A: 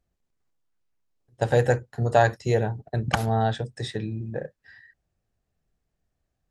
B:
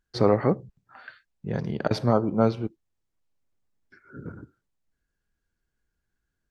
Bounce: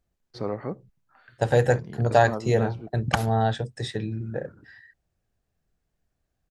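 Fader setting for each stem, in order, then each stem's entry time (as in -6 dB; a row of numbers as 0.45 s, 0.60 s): +0.5 dB, -10.0 dB; 0.00 s, 0.20 s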